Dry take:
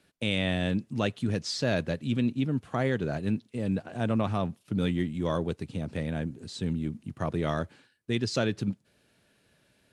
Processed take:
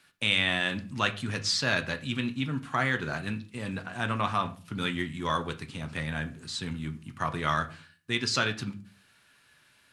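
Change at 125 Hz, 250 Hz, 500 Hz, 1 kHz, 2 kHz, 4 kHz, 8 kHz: −4.0, −5.0, −5.0, +6.0, +8.0, +6.5, +5.5 decibels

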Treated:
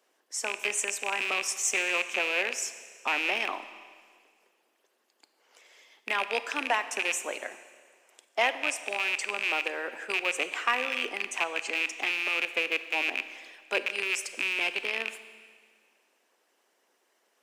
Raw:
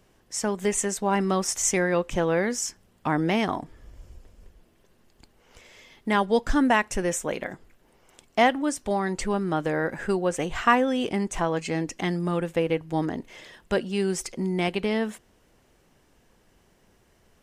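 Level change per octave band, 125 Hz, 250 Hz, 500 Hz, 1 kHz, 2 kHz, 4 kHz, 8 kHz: below −30 dB, −19.5 dB, −10.0 dB, −6.5 dB, +3.5 dB, +3.0 dB, −3.0 dB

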